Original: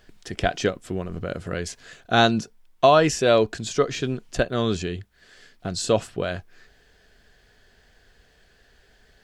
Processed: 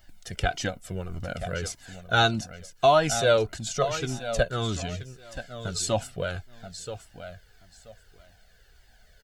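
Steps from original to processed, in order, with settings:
high-shelf EQ 9,100 Hz +12 dB
comb filter 1.4 ms, depth 41%
on a send: repeating echo 979 ms, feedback 19%, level −11.5 dB
on the sum: flanger whose copies keep moving one way falling 1.7 Hz

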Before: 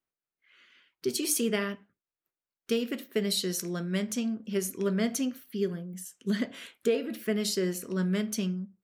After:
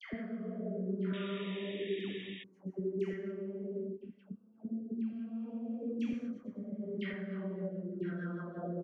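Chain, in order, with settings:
played backwards from end to start
high-frequency loss of the air 56 metres
double-tracking delay 26 ms −11 dB
extreme stretch with random phases 6.6×, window 0.25 s, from 0:03.76
noise gate −35 dBFS, range −25 dB
downward compressor 6 to 1, threshold −39 dBFS, peak gain reduction 18 dB
rotating-speaker cabinet horn 0.65 Hz, later 6.3 Hz, at 0:06.77
auto-filter low-pass saw down 1 Hz 290–2,500 Hz
all-pass dispersion lows, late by 134 ms, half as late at 1,000 Hz
sound drawn into the spectrogram noise, 0:01.13–0:02.44, 1,700–3,800 Hz −52 dBFS
level +2.5 dB

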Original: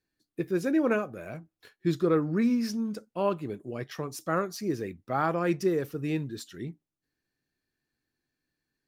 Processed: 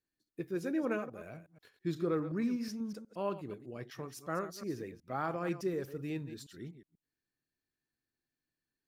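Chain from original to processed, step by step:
delay that plays each chunk backwards 122 ms, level −11.5 dB
level −8.5 dB

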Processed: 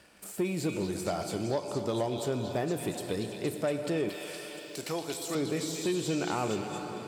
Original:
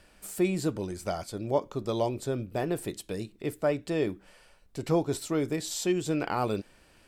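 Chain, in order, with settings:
convolution reverb RT60 4.0 s, pre-delay 13 ms, DRR 9 dB
downward compressor 3 to 1, threshold −31 dBFS, peak gain reduction 9 dB
0:04.09–0:05.35: spectral tilt +4 dB per octave
de-essing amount 90%
leveller curve on the samples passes 1
high-pass filter 100 Hz
echo through a band-pass that steps 233 ms, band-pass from 3,200 Hz, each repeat 0.7 octaves, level −1 dB

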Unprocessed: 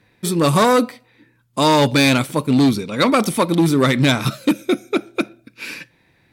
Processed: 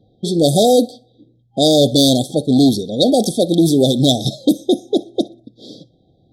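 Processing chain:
low-pass that shuts in the quiet parts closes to 2,200 Hz, open at −11 dBFS
brick-wall band-stop 800–3,200 Hz
dynamic equaliser 140 Hz, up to −5 dB, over −29 dBFS, Q 0.7
feedback echo with a high-pass in the loop 61 ms, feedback 27%, level −22.5 dB
level +5 dB

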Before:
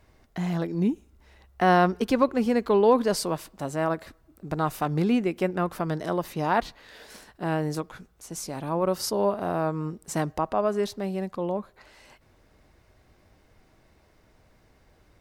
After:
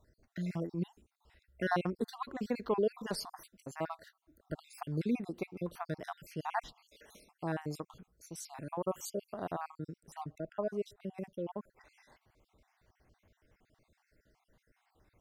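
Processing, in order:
time-frequency cells dropped at random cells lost 54%
0:10.00–0:11.18: high-shelf EQ 2,300 Hz −9.5 dB
level −8 dB

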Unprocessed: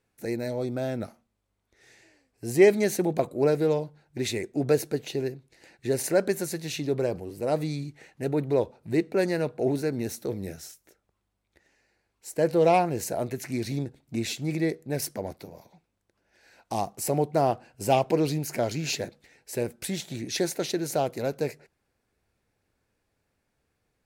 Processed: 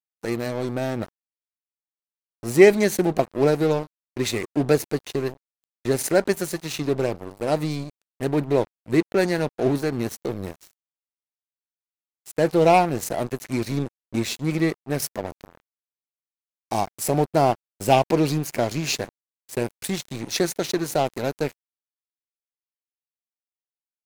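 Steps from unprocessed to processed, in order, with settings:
dynamic equaliser 500 Hz, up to −4 dB, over −33 dBFS, Q 2.4
dead-zone distortion −38.5 dBFS
level +7 dB

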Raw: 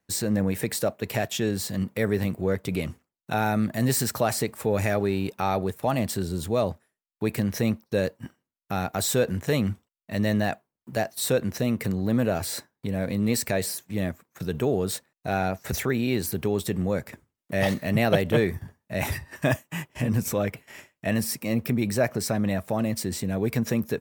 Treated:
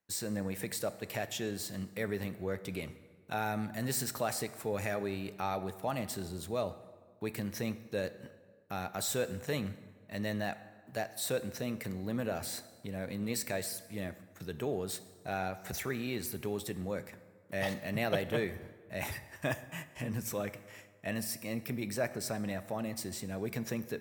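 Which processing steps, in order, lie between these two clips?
low-shelf EQ 410 Hz −5.5 dB
dense smooth reverb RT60 1.6 s, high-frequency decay 0.65×, DRR 12.5 dB
level −8 dB

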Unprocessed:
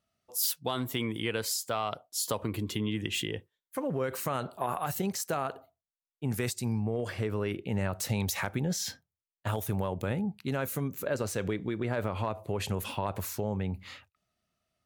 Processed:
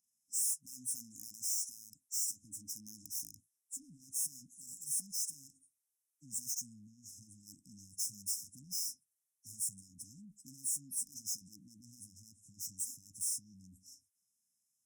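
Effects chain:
hearing-aid frequency compression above 3,800 Hz 1.5 to 1
high-pass filter 61 Hz 6 dB per octave
high-shelf EQ 2,000 Hz +5.5 dB
tube saturation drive 37 dB, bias 0.35
linear-phase brick-wall band-stop 300–5,100 Hz
RIAA equalisation recording
level −6.5 dB

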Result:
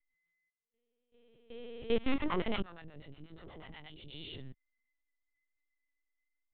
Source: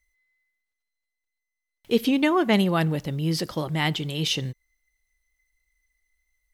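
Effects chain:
peak hold with a rise ahead of every peak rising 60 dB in 1.18 s
output level in coarse steps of 19 dB
0:02.14–0:04.14: two-band tremolo in antiphase 8.3 Hz, depth 100%, crossover 570 Hz
linear-prediction vocoder at 8 kHz pitch kept
level −7 dB

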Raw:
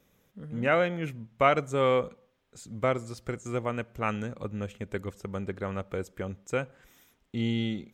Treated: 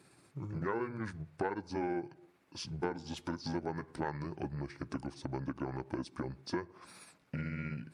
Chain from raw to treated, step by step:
pitch shift by two crossfaded delay taps −6.5 semitones
downward compressor 20 to 1, threshold −37 dBFS, peak gain reduction 20.5 dB
high-pass filter 140 Hz 12 dB per octave
saturating transformer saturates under 530 Hz
level +6.5 dB

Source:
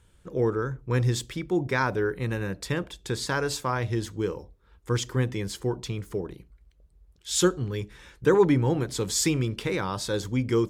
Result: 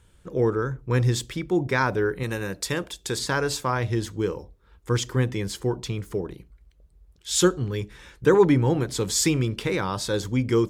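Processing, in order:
0:02.23–0:03.19: bass and treble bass −5 dB, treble +7 dB
level +2.5 dB

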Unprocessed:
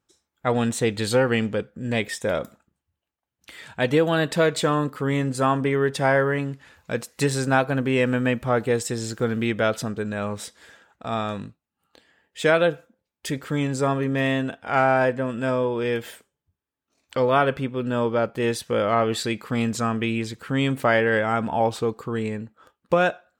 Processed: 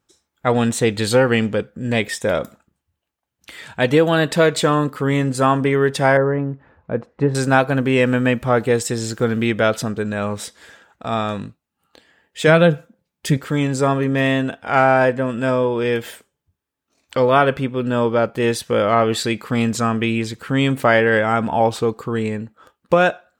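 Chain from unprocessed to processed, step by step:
0:06.17–0:07.35: low-pass filter 1,000 Hz 12 dB per octave
0:12.47–0:13.37: parametric band 160 Hz +10.5 dB 0.77 octaves
level +5 dB

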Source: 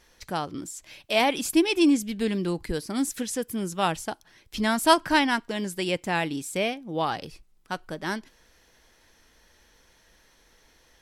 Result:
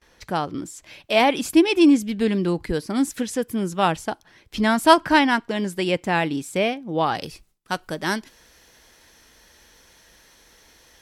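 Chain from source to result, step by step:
high-pass filter 42 Hz 6 dB per octave
noise gate with hold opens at −52 dBFS
high-shelf EQ 4,000 Hz −8 dB, from 0:07.15 +4.5 dB
level +5.5 dB

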